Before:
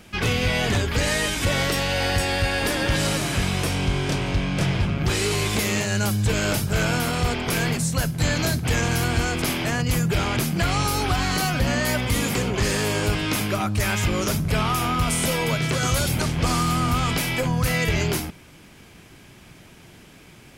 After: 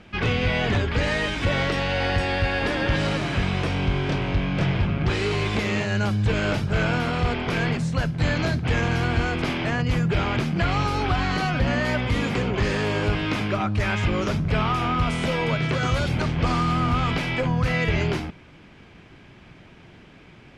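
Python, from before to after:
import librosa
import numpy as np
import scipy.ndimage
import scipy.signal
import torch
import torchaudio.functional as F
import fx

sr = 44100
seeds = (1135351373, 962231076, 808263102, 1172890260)

y = scipy.signal.sosfilt(scipy.signal.butter(2, 3200.0, 'lowpass', fs=sr, output='sos'), x)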